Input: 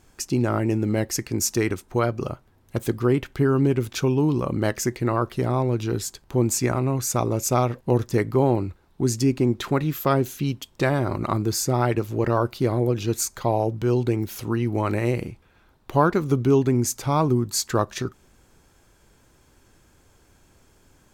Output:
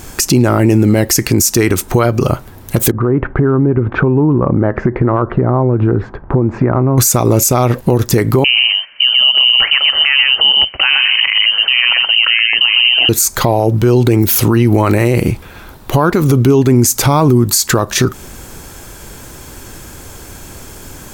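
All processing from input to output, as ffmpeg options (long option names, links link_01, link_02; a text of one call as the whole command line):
ffmpeg -i in.wav -filter_complex "[0:a]asettb=1/sr,asplit=3[link_01][link_02][link_03];[link_01]atrim=end=2.914[link_04];[link_02]atrim=start=2.91:end=6.98,asetpts=PTS-STARTPTS,afade=type=in:duration=0.004:curve=qsin,afade=type=out:start_time=4.066:duration=0.004:curve=qsin,lowpass=frequency=1500:width=0.5412,lowpass=frequency=1500:width=1.3066,acompressor=threshold=-31dB:ratio=16:attack=3.2:release=140:knee=1:detection=peak[link_05];[link_03]atrim=start=6.976[link_06];[link_04][link_05]acrossfade=duration=0.004:curve1=hsin:curve2=qsin[link_07];[link_07][link_06]acrossfade=duration=0.004:curve1=qsin:curve2=hsin,asettb=1/sr,asplit=3[link_08][link_09][link_10];[link_08]atrim=end=8.444[link_11];[link_09]atrim=start=8.44:end=13.09,asetpts=PTS-STARTPTS,afade=type=in:duration=0.004:curve=qsin,afade=type=out:start_time=4.646:duration=0.004:curve=qsin,highpass=180,aecho=1:1:123:0.473,atrim=end_sample=205065,lowpass=frequency=2700:width_type=q:width=0.5098,lowpass=frequency=2700:width_type=q:width=0.6013,lowpass=frequency=2700:width_type=q:width=0.9,lowpass=frequency=2700:width_type=q:width=2.563,afreqshift=-3200[link_12];[link_10]atrim=start=13.086[link_13];[link_11][link_12]acrossfade=duration=0.004:curve1=hsin:curve2=qsin[link_14];[link_14][link_13]acrossfade=duration=0.004:curve1=qsin:curve2=hsin,highshelf=frequency=9900:gain=11.5,acompressor=threshold=-27dB:ratio=5,alimiter=level_in=25dB:limit=-1dB:release=50:level=0:latency=1,volume=-1dB" out.wav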